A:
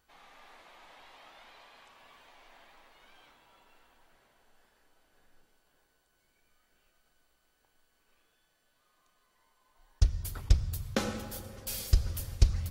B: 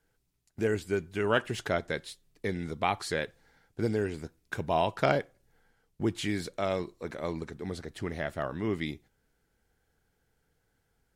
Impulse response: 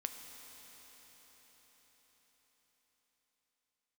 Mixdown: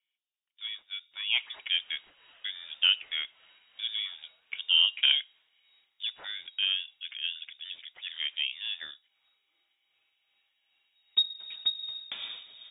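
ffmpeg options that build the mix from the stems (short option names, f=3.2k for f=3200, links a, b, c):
-filter_complex "[0:a]tremolo=f=2.6:d=0.58,adelay=1150,volume=-10dB[a];[1:a]bandpass=f=890:t=q:w=2:csg=0,volume=-1dB[b];[a][b]amix=inputs=2:normalize=0,dynaudnorm=f=490:g=5:m=8dB,lowpass=f=3.2k:t=q:w=0.5098,lowpass=f=3.2k:t=q:w=0.6013,lowpass=f=3.2k:t=q:w=0.9,lowpass=f=3.2k:t=q:w=2.563,afreqshift=-3800"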